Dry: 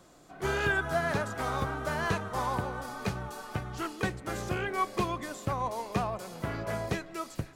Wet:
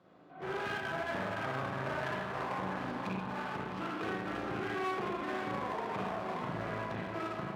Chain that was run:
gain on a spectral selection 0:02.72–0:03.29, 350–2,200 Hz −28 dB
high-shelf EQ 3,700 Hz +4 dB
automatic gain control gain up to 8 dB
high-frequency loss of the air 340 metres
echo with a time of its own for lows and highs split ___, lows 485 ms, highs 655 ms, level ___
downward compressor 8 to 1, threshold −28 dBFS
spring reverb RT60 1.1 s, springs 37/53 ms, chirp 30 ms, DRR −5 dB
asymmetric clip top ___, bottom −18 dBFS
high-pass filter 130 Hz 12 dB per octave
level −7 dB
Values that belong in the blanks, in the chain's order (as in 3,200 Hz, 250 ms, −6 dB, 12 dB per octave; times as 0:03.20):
780 Hz, −10 dB, −34.5 dBFS